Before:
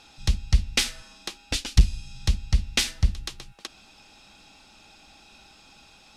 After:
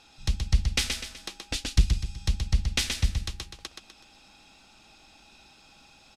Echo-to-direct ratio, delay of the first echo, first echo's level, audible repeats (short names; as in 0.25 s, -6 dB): -4.0 dB, 0.125 s, -5.0 dB, 4